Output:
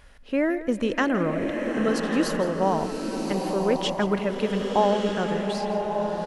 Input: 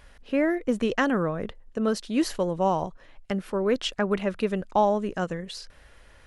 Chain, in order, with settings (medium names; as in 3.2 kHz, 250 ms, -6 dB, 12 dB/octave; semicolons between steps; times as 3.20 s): on a send: delay 166 ms -14.5 dB; on the sum: swelling reverb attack 1210 ms, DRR 2.5 dB